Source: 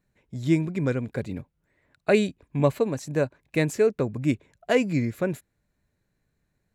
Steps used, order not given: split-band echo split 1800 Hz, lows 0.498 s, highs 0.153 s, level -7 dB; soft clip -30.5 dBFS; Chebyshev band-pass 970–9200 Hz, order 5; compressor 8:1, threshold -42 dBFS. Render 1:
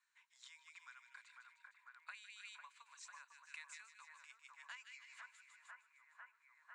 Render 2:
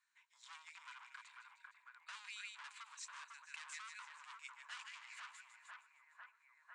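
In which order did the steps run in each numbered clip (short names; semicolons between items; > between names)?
split-band echo > compressor > Chebyshev band-pass > soft clip; split-band echo > soft clip > compressor > Chebyshev band-pass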